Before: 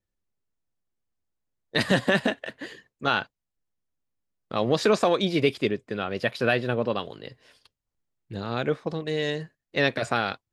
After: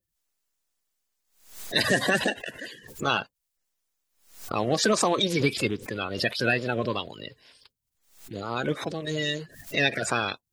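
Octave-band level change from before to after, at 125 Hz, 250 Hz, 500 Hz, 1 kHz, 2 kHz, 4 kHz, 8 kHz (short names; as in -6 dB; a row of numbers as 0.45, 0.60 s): -1.0, -1.5, -3.0, -0.5, +1.0, +2.5, +10.5 dB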